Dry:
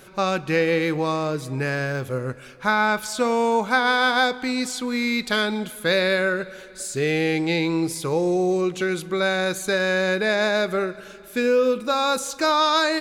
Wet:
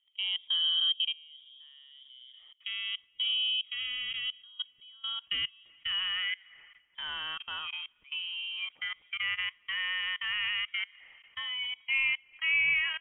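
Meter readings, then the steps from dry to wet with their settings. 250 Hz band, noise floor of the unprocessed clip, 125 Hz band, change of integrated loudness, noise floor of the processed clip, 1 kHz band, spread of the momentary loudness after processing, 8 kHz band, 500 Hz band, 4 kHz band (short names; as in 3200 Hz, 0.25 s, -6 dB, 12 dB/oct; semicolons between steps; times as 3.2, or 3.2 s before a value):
under -40 dB, -43 dBFS, under -30 dB, -8.5 dB, -67 dBFS, -25.0 dB, 14 LU, under -40 dB, under -40 dB, 0.0 dB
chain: level quantiser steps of 23 dB; band-pass sweep 350 Hz -> 1100 Hz, 4.35–6.56; inverted band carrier 3500 Hz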